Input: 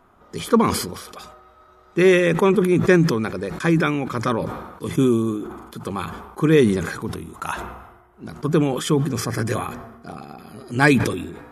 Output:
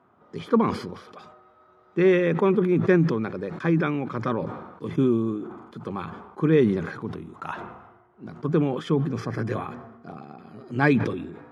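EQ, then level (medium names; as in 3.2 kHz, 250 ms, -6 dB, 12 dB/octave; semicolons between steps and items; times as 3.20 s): high-pass 100 Hz 24 dB/octave; dynamic bell 7.8 kHz, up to -6 dB, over -50 dBFS, Q 2.1; tape spacing loss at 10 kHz 22 dB; -3.0 dB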